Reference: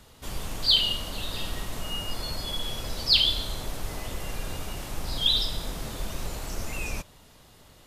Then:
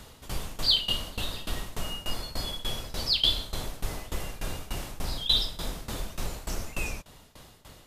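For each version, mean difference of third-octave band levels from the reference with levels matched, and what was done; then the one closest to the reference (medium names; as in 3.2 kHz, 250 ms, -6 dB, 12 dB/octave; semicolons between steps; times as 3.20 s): 3.5 dB: in parallel at -2 dB: compression, threshold -41 dBFS, peak gain reduction 23 dB; on the sum: tremolo saw down 3.4 Hz, depth 90%; trim +1.5 dB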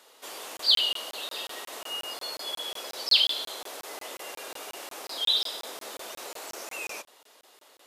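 6.0 dB: high-pass 380 Hz 24 dB/octave; crackling interface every 0.18 s, samples 1024, zero, from 0.57 s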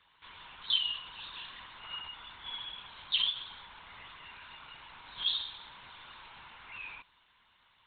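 14.5 dB: steep high-pass 830 Hz 36 dB/octave; LPC vocoder at 8 kHz whisper; trim -6.5 dB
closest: first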